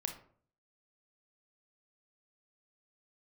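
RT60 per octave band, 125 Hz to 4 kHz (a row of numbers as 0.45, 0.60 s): 0.70, 0.60, 0.55, 0.50, 0.40, 0.30 s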